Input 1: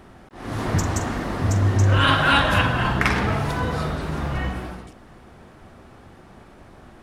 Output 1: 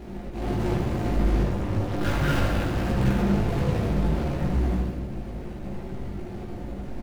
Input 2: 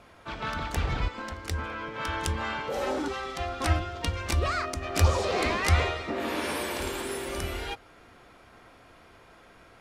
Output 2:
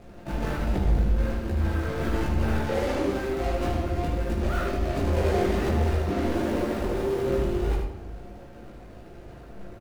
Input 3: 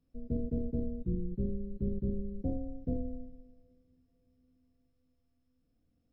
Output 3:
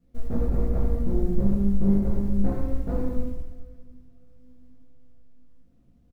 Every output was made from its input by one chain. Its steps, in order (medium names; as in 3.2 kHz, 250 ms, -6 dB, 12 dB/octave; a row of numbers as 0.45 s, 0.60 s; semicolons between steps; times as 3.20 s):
median filter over 41 samples; in parallel at +2.5 dB: compression 6:1, threshold -33 dBFS; on the sum: short-mantissa float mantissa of 4-bit; saturation -26.5 dBFS; chorus voices 2, 1.3 Hz, delay 17 ms, depth 3 ms; delay 76 ms -7 dB; simulated room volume 350 m³, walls mixed, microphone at 0.86 m; normalise loudness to -27 LUFS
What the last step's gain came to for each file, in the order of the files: +4.5 dB, +5.5 dB, +6.0 dB